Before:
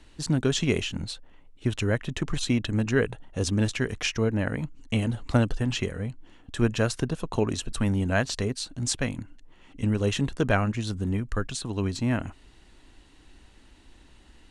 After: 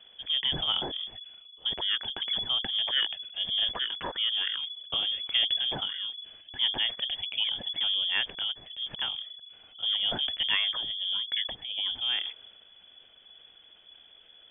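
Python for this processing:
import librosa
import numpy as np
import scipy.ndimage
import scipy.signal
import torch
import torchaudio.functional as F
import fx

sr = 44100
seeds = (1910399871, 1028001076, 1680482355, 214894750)

y = fx.transient(x, sr, attack_db=-2, sustain_db=5)
y = fx.freq_invert(y, sr, carrier_hz=3400)
y = y * librosa.db_to_amplitude(-4.5)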